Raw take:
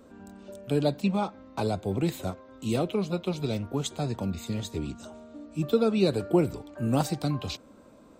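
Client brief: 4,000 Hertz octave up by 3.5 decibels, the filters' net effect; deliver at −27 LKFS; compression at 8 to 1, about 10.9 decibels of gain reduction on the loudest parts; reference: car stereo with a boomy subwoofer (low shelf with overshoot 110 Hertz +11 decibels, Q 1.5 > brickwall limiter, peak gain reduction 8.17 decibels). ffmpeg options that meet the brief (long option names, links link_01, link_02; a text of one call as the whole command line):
ffmpeg -i in.wav -af "equalizer=frequency=4000:width_type=o:gain=4,acompressor=threshold=-28dB:ratio=8,lowshelf=frequency=110:width_type=q:width=1.5:gain=11,volume=10dB,alimiter=limit=-16dB:level=0:latency=1" out.wav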